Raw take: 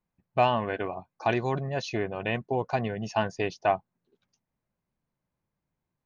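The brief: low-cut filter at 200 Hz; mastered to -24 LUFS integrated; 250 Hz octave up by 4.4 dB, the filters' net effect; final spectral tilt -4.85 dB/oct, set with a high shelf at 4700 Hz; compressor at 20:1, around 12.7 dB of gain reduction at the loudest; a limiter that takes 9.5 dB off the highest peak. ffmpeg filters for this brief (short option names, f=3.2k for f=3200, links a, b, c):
-af "highpass=200,equalizer=f=250:t=o:g=7.5,highshelf=f=4.7k:g=4.5,acompressor=threshold=-29dB:ratio=20,volume=14dB,alimiter=limit=-11.5dB:level=0:latency=1"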